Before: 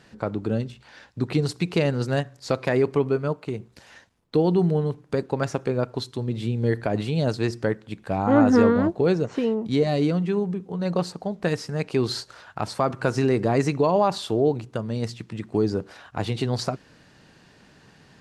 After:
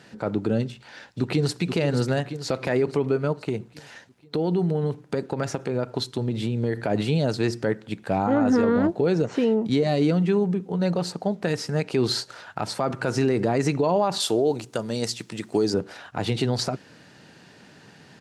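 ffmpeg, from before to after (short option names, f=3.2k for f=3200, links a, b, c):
-filter_complex "[0:a]asplit=2[a][b];[b]afade=t=in:st=0.68:d=0.01,afade=t=out:st=1.61:d=0.01,aecho=0:1:480|960|1440|1920|2400|2880:0.334965|0.184231|0.101327|0.0557299|0.0306514|0.0168583[c];[a][c]amix=inputs=2:normalize=0,asettb=1/sr,asplit=3[d][e][f];[d]atrim=end=3.384[g];[e]atrim=start=3.38:end=6.87,asetpts=PTS-STARTPTS,afade=t=in:d=0.004:c=qsin,afade=t=out:st=3.486:d=0.004:c=qsin,acompressor=threshold=-23dB:ratio=6:attack=3.2:release=140:knee=1:detection=peak[h];[f]atrim=start=6.866[i];[g][h]acrossfade=d=0.004:c1=hsin:c2=qsin[j];[j][i]acrossfade=d=0.004:c1=qsin:c2=hsin,asettb=1/sr,asplit=3[k][l][m];[k]atrim=end=14.204[n];[l]atrim=start=14.2:end=15.74,asetpts=PTS-STARTPTS,afade=t=in:d=0.004:c=qsin,afade=t=out:st=1.536:d=0.004:c=qsin,bass=f=250:g=-7,treble=f=4k:g=10[o];[m]atrim=start=15.736[p];[n][o]acrossfade=d=0.004:c1=hsin:c2=qsin[q];[q][p]acrossfade=d=0.004:c1=qsin:c2=hsin,highpass=110,bandreject=f=1.1k:w=12,alimiter=limit=-17dB:level=0:latency=1:release=62,volume=4dB"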